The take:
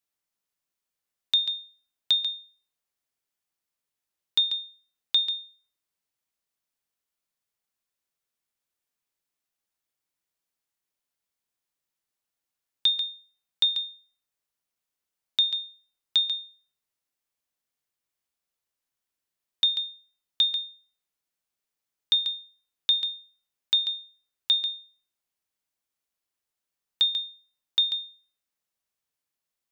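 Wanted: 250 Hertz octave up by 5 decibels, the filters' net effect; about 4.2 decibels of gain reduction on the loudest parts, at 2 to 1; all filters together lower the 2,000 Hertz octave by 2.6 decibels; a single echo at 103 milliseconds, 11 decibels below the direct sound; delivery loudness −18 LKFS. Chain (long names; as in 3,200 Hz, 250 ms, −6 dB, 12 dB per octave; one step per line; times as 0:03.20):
parametric band 250 Hz +6.5 dB
parametric band 2,000 Hz −3.5 dB
downward compressor 2 to 1, threshold −26 dBFS
single-tap delay 103 ms −11 dB
level +10.5 dB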